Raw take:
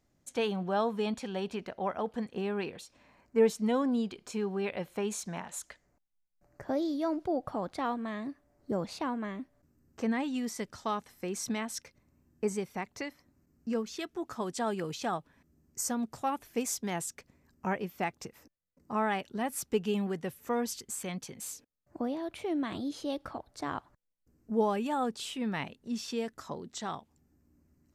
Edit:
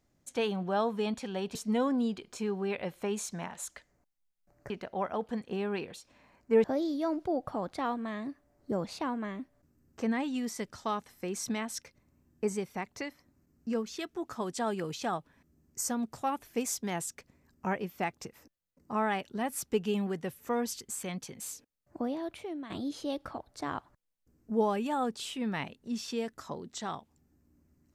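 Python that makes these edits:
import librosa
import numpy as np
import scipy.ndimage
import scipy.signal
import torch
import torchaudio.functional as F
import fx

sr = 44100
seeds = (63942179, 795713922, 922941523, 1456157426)

y = fx.edit(x, sr, fx.move(start_s=1.55, length_s=1.94, to_s=6.64),
    fx.fade_out_to(start_s=22.29, length_s=0.41, curve='qua', floor_db=-9.5), tone=tone)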